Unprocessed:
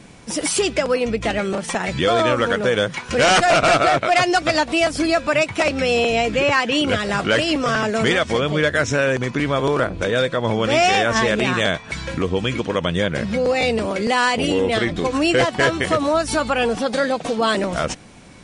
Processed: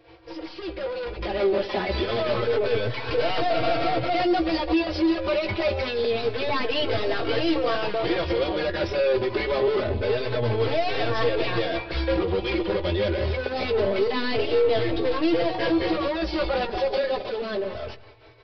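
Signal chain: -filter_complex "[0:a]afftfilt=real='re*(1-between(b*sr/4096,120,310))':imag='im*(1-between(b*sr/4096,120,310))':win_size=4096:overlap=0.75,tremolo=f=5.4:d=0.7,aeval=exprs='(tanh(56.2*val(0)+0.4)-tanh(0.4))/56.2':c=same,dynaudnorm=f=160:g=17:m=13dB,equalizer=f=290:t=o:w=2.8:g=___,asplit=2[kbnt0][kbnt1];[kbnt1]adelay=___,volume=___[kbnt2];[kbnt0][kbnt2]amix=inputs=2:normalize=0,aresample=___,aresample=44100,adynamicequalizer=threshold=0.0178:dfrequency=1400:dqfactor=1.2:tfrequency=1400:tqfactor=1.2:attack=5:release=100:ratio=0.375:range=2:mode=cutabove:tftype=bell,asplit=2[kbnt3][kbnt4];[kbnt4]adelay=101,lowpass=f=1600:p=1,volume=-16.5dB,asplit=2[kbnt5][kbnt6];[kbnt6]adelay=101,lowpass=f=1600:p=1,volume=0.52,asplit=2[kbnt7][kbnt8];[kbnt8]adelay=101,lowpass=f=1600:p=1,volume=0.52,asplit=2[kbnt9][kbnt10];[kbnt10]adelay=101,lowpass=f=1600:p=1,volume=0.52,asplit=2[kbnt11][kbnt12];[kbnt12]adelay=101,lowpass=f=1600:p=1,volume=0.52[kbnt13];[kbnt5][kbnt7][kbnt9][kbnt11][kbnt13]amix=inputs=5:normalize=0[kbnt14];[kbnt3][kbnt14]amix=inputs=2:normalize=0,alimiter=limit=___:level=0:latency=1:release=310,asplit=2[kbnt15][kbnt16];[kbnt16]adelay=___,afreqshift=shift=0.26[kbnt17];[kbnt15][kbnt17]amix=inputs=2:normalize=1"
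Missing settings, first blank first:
7, 15, -9dB, 11025, -12.5dB, 3.9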